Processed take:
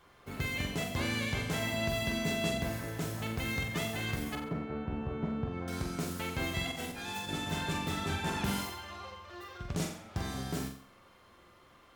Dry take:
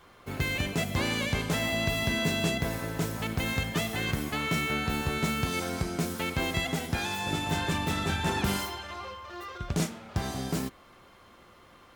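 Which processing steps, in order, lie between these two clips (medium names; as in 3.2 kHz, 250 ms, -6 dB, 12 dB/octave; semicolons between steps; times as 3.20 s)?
4.35–5.68 s: low-pass 1.1 kHz 12 dB/octave; 6.67–7.29 s: compressor with a negative ratio -34 dBFS, ratio -0.5; flutter echo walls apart 7.7 m, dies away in 0.49 s; trim -6 dB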